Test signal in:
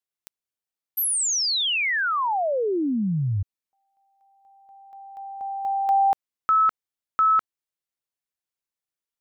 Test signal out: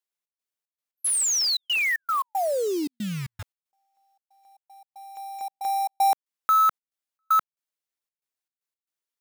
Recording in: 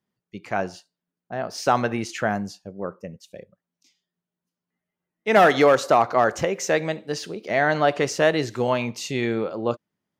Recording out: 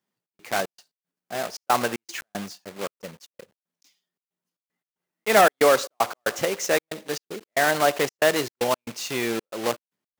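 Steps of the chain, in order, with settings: block-companded coder 3-bit; high-pass 310 Hz 6 dB/octave; trance gate "xx.xx.x.xx" 115 bpm -60 dB

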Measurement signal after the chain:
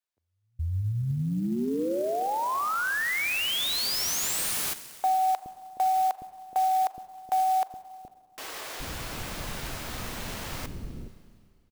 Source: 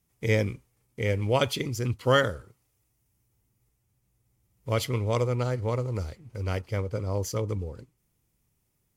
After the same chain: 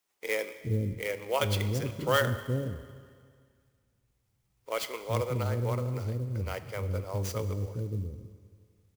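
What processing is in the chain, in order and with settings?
bands offset in time highs, lows 420 ms, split 390 Hz; Schroeder reverb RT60 2 s, combs from 30 ms, DRR 12 dB; in parallel at -11.5 dB: saturation -19.5 dBFS; on the sum: sampling jitter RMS 0.023 ms; trim -4 dB

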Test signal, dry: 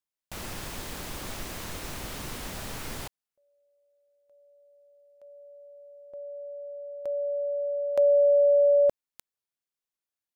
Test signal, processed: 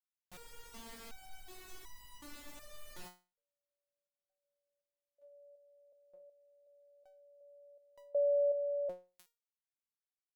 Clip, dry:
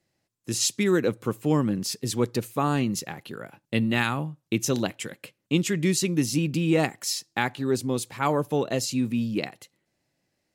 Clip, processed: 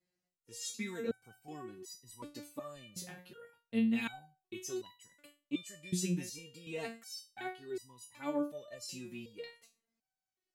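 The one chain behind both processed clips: dynamic bell 1.2 kHz, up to -4 dB, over -45 dBFS, Q 3.5; resonator arpeggio 2.7 Hz 180–970 Hz

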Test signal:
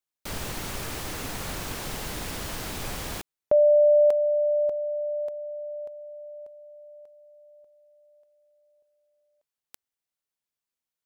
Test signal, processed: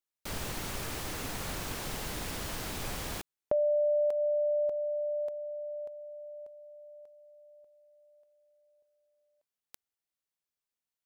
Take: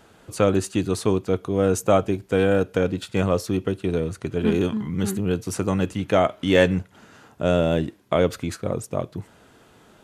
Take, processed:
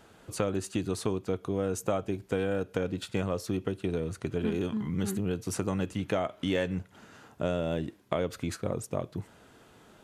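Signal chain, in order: compression 4:1, threshold -23 dBFS; trim -3.5 dB

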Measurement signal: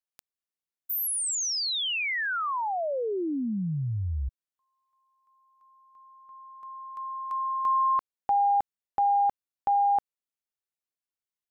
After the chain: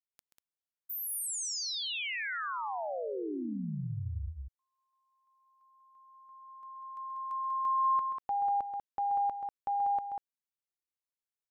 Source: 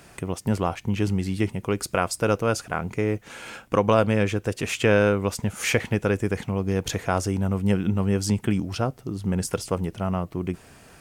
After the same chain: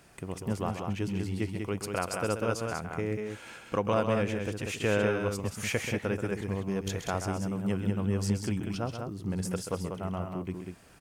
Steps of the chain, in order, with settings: loudspeakers at several distances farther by 45 m -9 dB, 66 m -5 dB; trim -8.5 dB

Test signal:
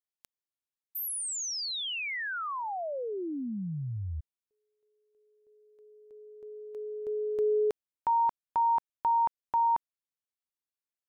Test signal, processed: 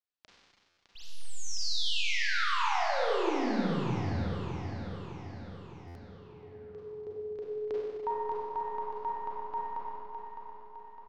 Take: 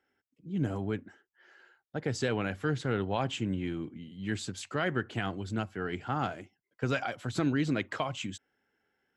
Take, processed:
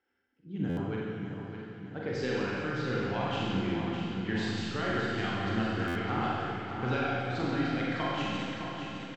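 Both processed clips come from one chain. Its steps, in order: tracing distortion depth 0.02 ms; low-pass 5.3 kHz 24 dB/octave; band-stop 620 Hz, Q 12; reverb removal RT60 0.6 s; peaking EQ 140 Hz -2 dB; gain riding within 3 dB 0.5 s; on a send: feedback delay 609 ms, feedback 55%, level -7.5 dB; on the sum: Schroeder reverb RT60 2.1 s, combs from 32 ms, DRR -5.5 dB; buffer glitch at 0.69/5.87 s, samples 512, times 6; trim -4 dB

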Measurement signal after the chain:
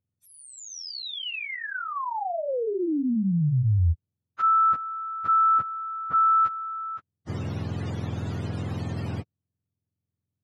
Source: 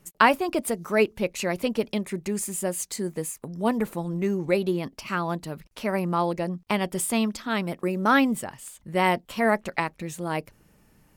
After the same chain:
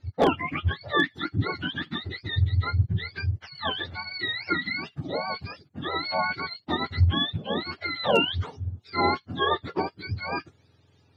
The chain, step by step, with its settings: spectrum inverted on a logarithmic axis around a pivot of 870 Hz; low-pass 4.5 kHz 12 dB/octave; wavefolder -11 dBFS

